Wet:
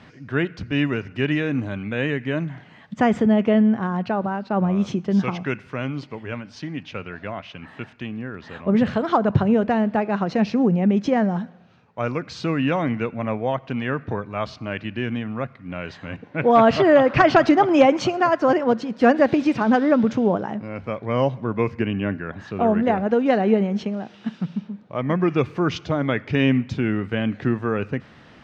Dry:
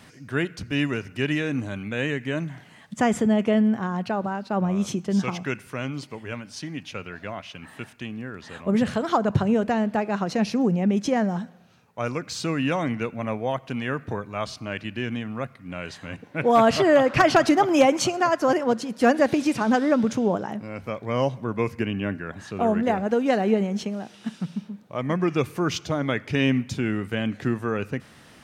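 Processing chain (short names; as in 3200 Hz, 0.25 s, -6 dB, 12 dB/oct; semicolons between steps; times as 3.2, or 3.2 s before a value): air absorption 190 m; gain +3.5 dB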